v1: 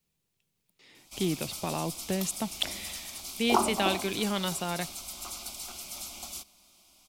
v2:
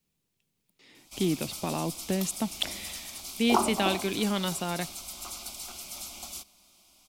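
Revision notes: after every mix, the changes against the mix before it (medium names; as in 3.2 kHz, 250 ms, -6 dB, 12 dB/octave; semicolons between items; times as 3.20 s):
speech: add peaking EQ 260 Hz +5 dB 0.79 oct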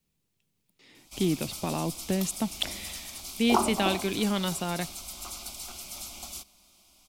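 master: add bass shelf 100 Hz +6 dB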